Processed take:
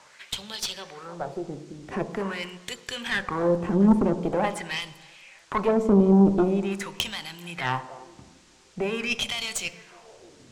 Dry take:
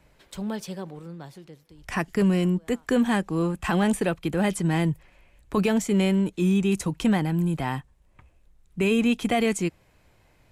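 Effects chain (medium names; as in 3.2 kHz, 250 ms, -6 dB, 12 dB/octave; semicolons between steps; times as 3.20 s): treble shelf 7 kHz +10.5 dB; in parallel at +0.5 dB: compression, threshold -33 dBFS, peak gain reduction 14.5 dB; on the sum: peak limiter -16.5 dBFS, peak gain reduction 7 dB; feedback echo behind a band-pass 303 ms, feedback 35%, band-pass 790 Hz, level -17.5 dB; wah-wah 0.45 Hz 250–3900 Hz, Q 2.4; band noise 870–7800 Hz -69 dBFS; Chebyshev shaper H 4 -15 dB, 5 -24 dB, 6 -9 dB, 8 -24 dB, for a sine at -18 dBFS; on a send at -10 dB: reverberation RT60 1.0 s, pre-delay 3 ms; on the sum: trim +7.5 dB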